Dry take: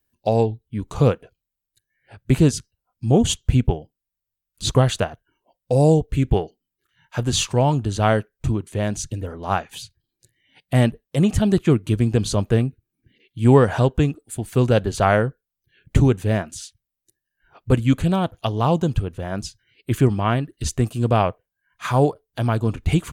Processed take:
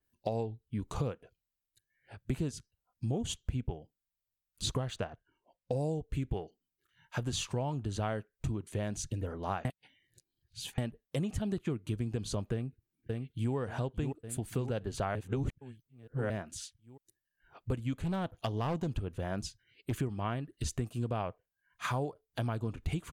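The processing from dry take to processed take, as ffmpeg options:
-filter_complex "[0:a]asettb=1/sr,asplit=3[a][b][c];[a]atrim=end=4.794[d];[b]atrim=start=4.79:end=5.81,asetpts=PTS-STARTPTS,afade=t=in:d=0.004:c=qsin,afade=t=out:st=1.016:d=0.004:c=qsin,adynamicsmooth=sensitivity=6.5:basefreq=5.5k[e];[c]atrim=start=5.806[f];[d][e]acrossfade=d=0.004:c1=hsin:c2=qsin[g];[g][f]acrossfade=d=0.004:c1=qsin:c2=hsin,asplit=2[h][i];[i]afade=t=in:st=12.52:d=0.01,afade=t=out:st=13.55:d=0.01,aecho=0:1:570|1140|1710|2280|2850|3420:0.334965|0.184231|0.101327|0.0557299|0.0306514|0.0168583[j];[h][j]amix=inputs=2:normalize=0,asettb=1/sr,asplit=3[k][l][m];[k]atrim=end=17.944[n];[l]atrim=start=17.94:end=19.99,asetpts=PTS-STARTPTS,afade=t=in:d=0.004:c=qsin,afade=t=out:st=2.046:d=0.004:c=qsin,volume=16dB,asoftclip=hard,volume=-16dB[o];[m]atrim=start=19.986[p];[n][o]acrossfade=d=0.004:c1=hsin:c2=qsin[q];[q][p]acrossfade=d=0.004:c1=qsin:c2=hsin,asplit=5[r][s][t][u][v];[r]atrim=end=9.652[w];[s]atrim=start=9.648:end=10.782,asetpts=PTS-STARTPTS,areverse[x];[t]atrim=start=10.778:end=15.152[y];[u]atrim=start=15.148:end=16.302,asetpts=PTS-STARTPTS,areverse[z];[v]atrim=start=16.298[aa];[w][x]acrossfade=d=0.004:c1=hsin:c2=hsin[ab];[ab][y]acrossfade=d=0.004:c1=hsin:c2=hsin[ac];[ac][z]acrossfade=d=0.004:c1=hsin:c2=hsin[ad];[ad][aa]acrossfade=d=0.004:c1=hsin:c2=hsin,acompressor=threshold=-25dB:ratio=6,adynamicequalizer=threshold=0.00398:dfrequency=3600:dqfactor=0.7:tfrequency=3600:tqfactor=0.7:attack=5:release=100:ratio=0.375:range=2:mode=cutabove:tftype=highshelf,volume=-6dB"

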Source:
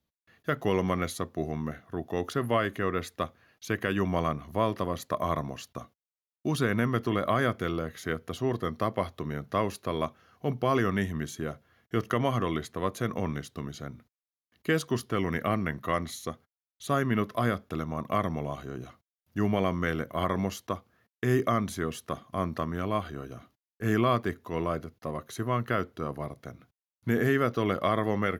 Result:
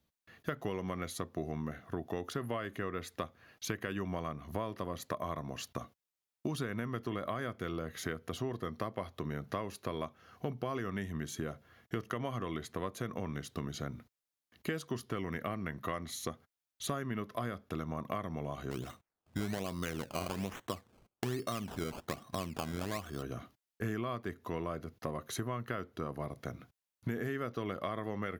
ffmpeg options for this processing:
-filter_complex "[0:a]asplit=3[a][b][c];[a]afade=t=out:st=18.7:d=0.02[d];[b]acrusher=samples=17:mix=1:aa=0.000001:lfo=1:lforange=17:lforate=1.2,afade=t=in:st=18.7:d=0.02,afade=t=out:st=23.21:d=0.02[e];[c]afade=t=in:st=23.21:d=0.02[f];[d][e][f]amix=inputs=3:normalize=0,acompressor=threshold=-37dB:ratio=6,volume=3dB"

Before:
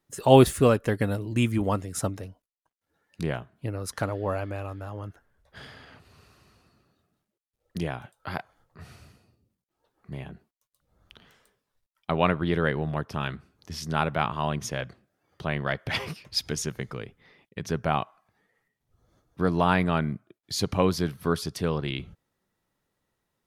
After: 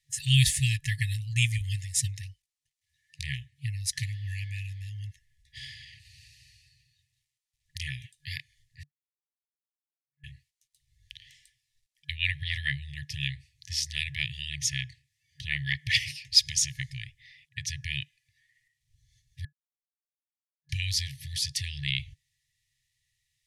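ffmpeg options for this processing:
-filter_complex "[0:a]asettb=1/sr,asplit=3[a][b][c];[a]atrim=end=8.834[d];[b]atrim=start=8.83:end=10.24,asetpts=PTS-STARTPTS,afade=t=in:d=0.004:c=qsin,afade=t=out:st=1.406:d=0.004:c=qsin,asuperpass=centerf=620:order=4:qfactor=7.6[e];[c]atrim=start=10.236[f];[d][e]acrossfade=d=0.004:c1=hsin:c2=qsin[g];[g][f]acrossfade=d=0.004:c1=qsin:c2=hsin,asplit=3[h][i][j];[h]atrim=end=19.45,asetpts=PTS-STARTPTS,afade=t=out:st=19.446:d=0.004:c=hsin[k];[i]atrim=start=19.45:end=20.69,asetpts=PTS-STARTPTS,volume=0[l];[j]atrim=start=20.69,asetpts=PTS-STARTPTS,afade=t=in:d=0.004:c=hsin[m];[k][l][m]concat=n=3:v=0:a=1,afftfilt=real='re*(1-between(b*sr/4096,150,1700))':imag='im*(1-between(b*sr/4096,150,1700))':win_size=4096:overlap=0.75,lowpass=8.5k,highshelf=f=2.7k:g=9.5,volume=1dB"

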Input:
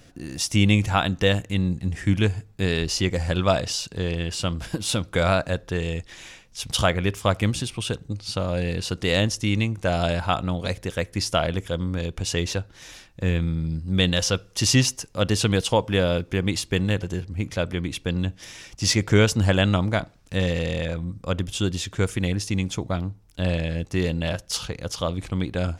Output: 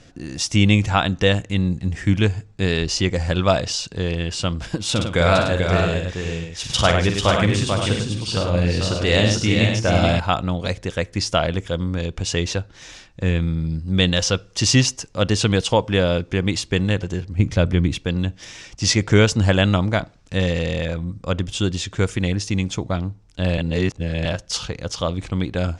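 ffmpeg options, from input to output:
-filter_complex "[0:a]asettb=1/sr,asplit=3[a][b][c];[a]atrim=end=4.914[d];[b]atrim=start=4.91:end=10.2,asetpts=PTS-STARTPTS,afade=t=in:d=0.004:c=qsin,afade=t=out:st=5.286:d=0.004:c=qsin,aecho=1:1:46|101|151|441|501|544:0.473|0.501|0.112|0.562|0.251|0.316,atrim=end_sample=233289[e];[c]atrim=start=10.196[f];[d][e]acrossfade=d=0.004:c1=hsin:c2=qsin[g];[g][f]acrossfade=d=0.004:c1=qsin:c2=hsin,asettb=1/sr,asplit=3[h][i][j];[h]atrim=end=17.394[k];[i]atrim=start=17.39:end=17.98,asetpts=PTS-STARTPTS,afade=t=in:d=0.004:c=qsin,afade=t=out:st=0.586:d=0.004:c=qsin,lowshelf=f=250:g=10[l];[j]atrim=start=17.976[m];[k][l]acrossfade=d=0.004:c1=hsin:c2=qsin[n];[n][m]acrossfade=d=0.004:c1=qsin:c2=hsin,asplit=3[o][p][q];[o]atrim=end=23.582[r];[p]atrim=start=23.578:end=24.252,asetpts=PTS-STARTPTS,areverse[s];[q]atrim=start=24.248[t];[r][s]acrossfade=d=0.004:c1=hsin:c2=hsin[u];[u][t]acrossfade=d=0.004:c1=hsin:c2=hsin,lowpass=f=8.2k:w=0.5412,lowpass=f=8.2k:w=1.3066,volume=3dB"

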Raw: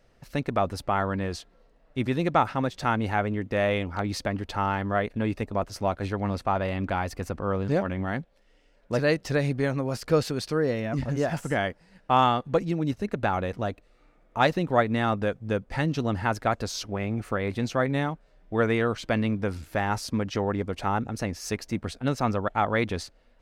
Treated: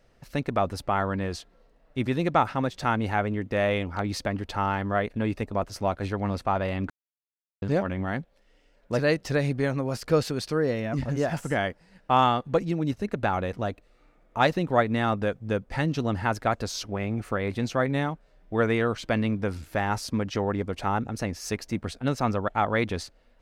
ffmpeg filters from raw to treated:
-filter_complex "[0:a]asplit=3[a][b][c];[a]atrim=end=6.9,asetpts=PTS-STARTPTS,afade=t=out:st=6.896:d=0.004:c=hsin[d];[b]atrim=start=6.9:end=7.62,asetpts=PTS-STARTPTS,volume=0[e];[c]atrim=start=7.62,asetpts=PTS-STARTPTS,afade=t=in:d=0.004:c=hsin[f];[d][e][f]concat=n=3:v=0:a=1"

